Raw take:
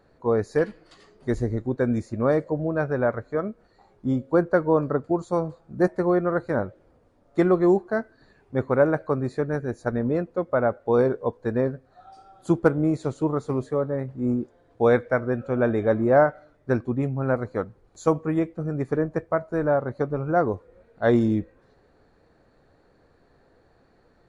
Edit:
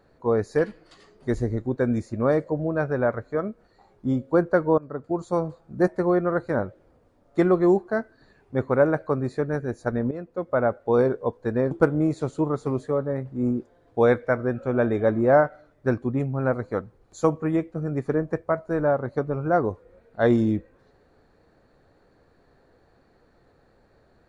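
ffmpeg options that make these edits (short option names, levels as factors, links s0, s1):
-filter_complex "[0:a]asplit=4[s0][s1][s2][s3];[s0]atrim=end=4.78,asetpts=PTS-STARTPTS,afade=t=out:st=4.776:d=0.004:c=hsin:silence=0.0794328[s4];[s1]atrim=start=4.78:end=10.11,asetpts=PTS-STARTPTS,afade=t=in:d=0.5:silence=0.0794328,afade=t=out:st=5.326:d=0.004:c=hsin:silence=0.223872[s5];[s2]atrim=start=10.11:end=11.712,asetpts=PTS-STARTPTS,afade=t=in:d=0.47:silence=0.223872[s6];[s3]atrim=start=12.538[s7];[s4][s5][s6]concat=n=3:v=0:a=1[s8];[s8][s7]acrossfade=d=0.004:c1=hsin:c2=hsin"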